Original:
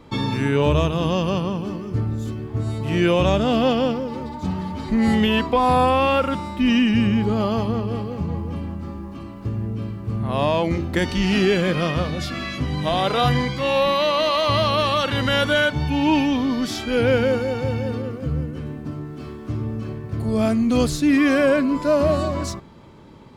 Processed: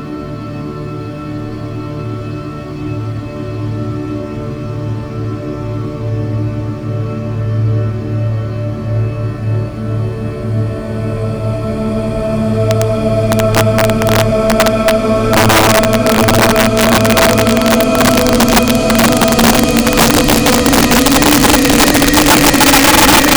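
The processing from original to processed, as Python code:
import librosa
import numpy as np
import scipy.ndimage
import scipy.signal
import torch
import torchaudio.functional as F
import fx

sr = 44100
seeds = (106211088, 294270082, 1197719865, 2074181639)

y = fx.rev_freeverb(x, sr, rt60_s=0.44, hf_ratio=0.6, predelay_ms=55, drr_db=-10.0)
y = fx.paulstretch(y, sr, seeds[0], factor=12.0, window_s=1.0, from_s=19.21)
y = (np.mod(10.0 ** (4.0 / 20.0) * y + 1.0, 2.0) - 1.0) / 10.0 ** (4.0 / 20.0)
y = y * librosa.db_to_amplitude(2.0)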